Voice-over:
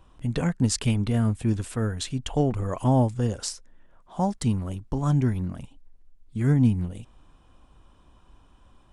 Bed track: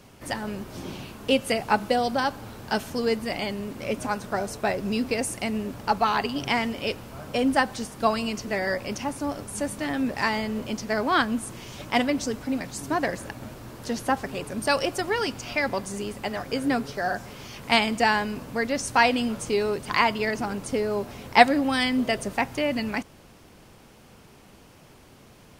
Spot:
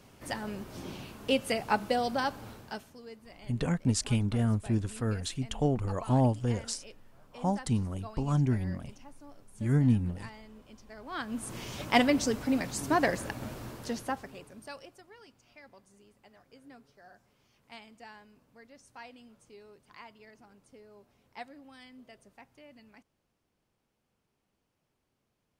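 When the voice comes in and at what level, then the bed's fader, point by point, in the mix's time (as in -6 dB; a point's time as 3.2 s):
3.25 s, -4.5 dB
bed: 2.51 s -5.5 dB
2.99 s -23 dB
10.98 s -23 dB
11.56 s -0.5 dB
13.65 s -0.5 dB
15.07 s -28.5 dB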